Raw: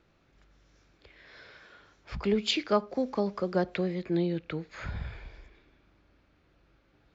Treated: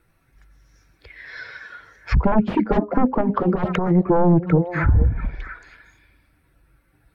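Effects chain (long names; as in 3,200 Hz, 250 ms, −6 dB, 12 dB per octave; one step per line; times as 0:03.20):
spectral dynamics exaggerated over time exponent 1.5
sine wavefolder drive 17 dB, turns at −13.5 dBFS
0:03.21–0:03.92: compressor whose output falls as the input rises −21 dBFS, ratio −0.5
on a send: echo through a band-pass that steps 226 ms, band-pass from 200 Hz, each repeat 1.4 octaves, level −7 dB
on the sum: treble cut that deepens with the level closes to 650 Hz, closed at −18 dBFS
level +4 dB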